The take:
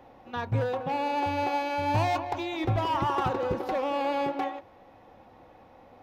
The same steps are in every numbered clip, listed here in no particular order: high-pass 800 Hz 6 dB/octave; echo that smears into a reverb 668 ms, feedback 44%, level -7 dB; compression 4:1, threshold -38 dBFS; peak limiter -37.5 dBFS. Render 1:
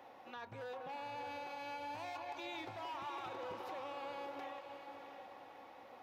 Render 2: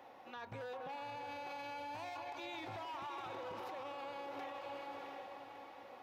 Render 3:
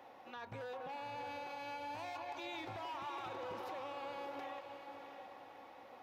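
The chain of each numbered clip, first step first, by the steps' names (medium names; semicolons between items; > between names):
compression > high-pass > peak limiter > echo that smears into a reverb; high-pass > compression > echo that smears into a reverb > peak limiter; high-pass > compression > peak limiter > echo that smears into a reverb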